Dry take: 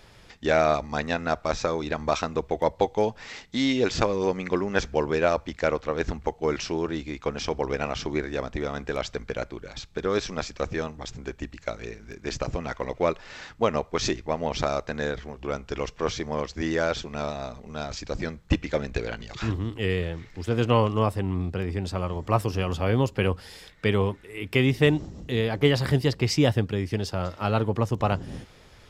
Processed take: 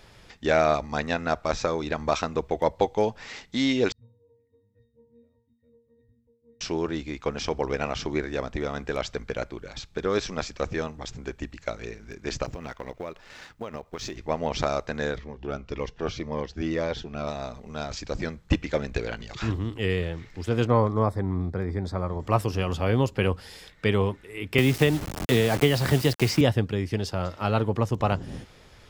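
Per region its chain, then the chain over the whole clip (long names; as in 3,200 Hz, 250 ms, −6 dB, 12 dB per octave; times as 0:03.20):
0:03.92–0:06.61: guitar amp tone stack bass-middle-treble 10-0-1 + resonances in every octave A#, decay 0.44 s
0:12.45–0:14.17: mu-law and A-law mismatch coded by A + downward compressor, threshold −31 dBFS
0:15.18–0:17.27: high-frequency loss of the air 120 metres + phaser whose notches keep moving one way falling 1.9 Hz
0:20.67–0:22.20: Butterworth band-reject 2,800 Hz, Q 2.4 + high-shelf EQ 4,700 Hz −11 dB
0:24.58–0:26.41: parametric band 690 Hz +3.5 dB 0.25 octaves + bit-depth reduction 6 bits, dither none + multiband upward and downward compressor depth 100%
whole clip: no processing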